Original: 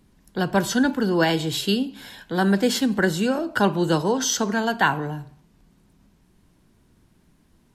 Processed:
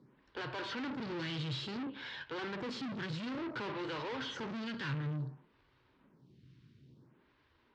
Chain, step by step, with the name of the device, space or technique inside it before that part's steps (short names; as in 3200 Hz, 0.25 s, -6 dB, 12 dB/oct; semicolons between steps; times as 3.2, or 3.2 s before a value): vibe pedal into a guitar amplifier (photocell phaser 0.57 Hz; tube stage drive 41 dB, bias 0.7; speaker cabinet 100–4400 Hz, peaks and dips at 130 Hz +10 dB, 190 Hz -6 dB, 710 Hz -9 dB); gain +4 dB